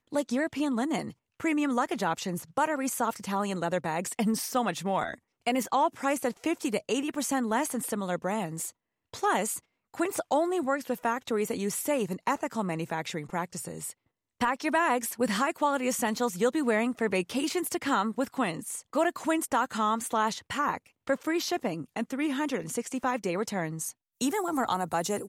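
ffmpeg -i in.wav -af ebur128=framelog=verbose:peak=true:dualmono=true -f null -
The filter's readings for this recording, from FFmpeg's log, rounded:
Integrated loudness:
  I:         -26.7 LUFS
  Threshold: -36.8 LUFS
Loudness range:
  LRA:         3.1 LU
  Threshold: -46.8 LUFS
  LRA low:   -28.2 LUFS
  LRA high:  -25.1 LUFS
True peak:
  Peak:      -14.6 dBFS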